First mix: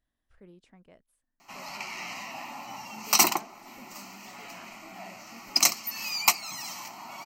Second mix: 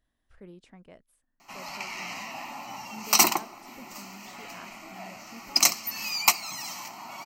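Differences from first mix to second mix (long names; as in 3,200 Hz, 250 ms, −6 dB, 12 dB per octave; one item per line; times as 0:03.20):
speech +5.0 dB
reverb: on, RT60 1.5 s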